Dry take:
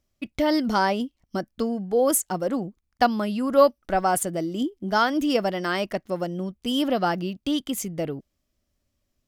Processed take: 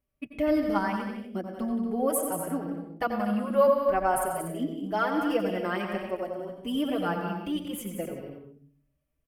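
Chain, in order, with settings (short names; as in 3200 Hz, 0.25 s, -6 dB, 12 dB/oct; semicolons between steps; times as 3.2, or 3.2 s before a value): band shelf 5100 Hz -12 dB 1.3 oct; loudspeakers at several distances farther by 62 m -9 dB, 83 m -11 dB; reverb, pre-delay 86 ms, DRR 5.5 dB; endless flanger 4.8 ms +0.46 Hz; gain -3.5 dB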